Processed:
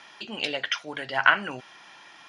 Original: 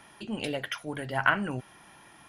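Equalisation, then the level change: high-pass 640 Hz 6 dB/octave; low-pass 5.8 kHz 24 dB/octave; treble shelf 2.7 kHz +8.5 dB; +4.0 dB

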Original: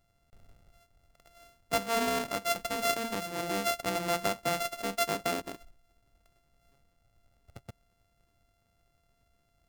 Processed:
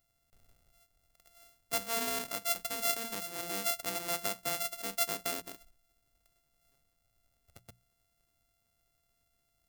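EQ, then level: treble shelf 2.2 kHz +8 dB; treble shelf 10 kHz +9 dB; hum notches 60/120/180 Hz; -9.0 dB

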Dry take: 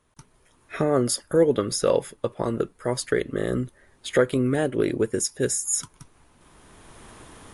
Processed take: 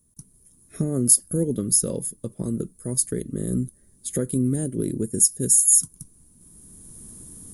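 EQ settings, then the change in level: FFT filter 120 Hz 0 dB, 190 Hz +5 dB, 790 Hz -20 dB, 2.8 kHz -20 dB, 11 kHz +14 dB; +1.5 dB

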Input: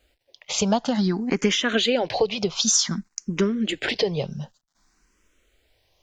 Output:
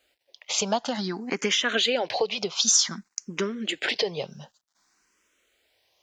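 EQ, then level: high-pass 580 Hz 6 dB/octave; 0.0 dB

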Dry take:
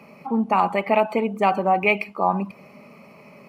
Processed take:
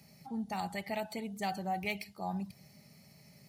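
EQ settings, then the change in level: FFT filter 130 Hz 0 dB, 230 Hz -16 dB, 360 Hz -18 dB, 510 Hz -23 dB, 770 Hz -15 dB, 1.1 kHz -29 dB, 1.8 kHz -8 dB, 2.5 kHz -20 dB, 3.7 kHz +1 dB, 7 kHz +4 dB; 0.0 dB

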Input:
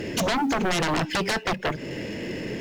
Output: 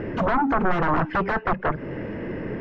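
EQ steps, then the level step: resonant low-pass 1.3 kHz, resonance Q 2.1; bass shelf 84 Hz +9 dB; 0.0 dB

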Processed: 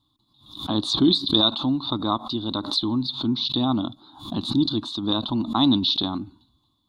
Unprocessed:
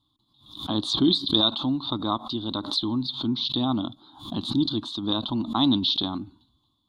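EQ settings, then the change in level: band-stop 3.2 kHz, Q 11; +2.5 dB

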